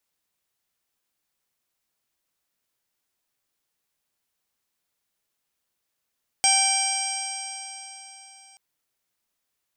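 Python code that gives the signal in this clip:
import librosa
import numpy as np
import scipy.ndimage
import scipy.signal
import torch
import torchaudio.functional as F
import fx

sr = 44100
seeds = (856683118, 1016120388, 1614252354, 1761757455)

y = fx.additive_stiff(sr, length_s=2.13, hz=778.0, level_db=-23.0, upper_db=(-14.0, -2.0, -4, -16.5, -3, 0.5, -7, -16, 4.0), decay_s=3.69, stiffness=0.0014)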